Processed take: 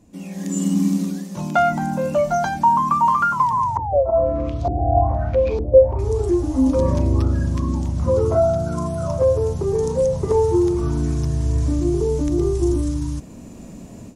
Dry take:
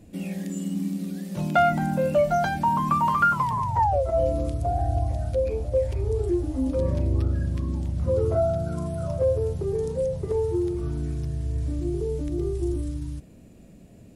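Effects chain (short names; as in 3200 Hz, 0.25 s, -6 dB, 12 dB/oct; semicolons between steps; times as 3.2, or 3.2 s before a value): fifteen-band EQ 250 Hz +5 dB, 1000 Hz +11 dB, 6300 Hz +10 dB; AGC gain up to 15.5 dB; 3.77–5.99 LFO low-pass saw up 1.1 Hz 320–4500 Hz; gain -6 dB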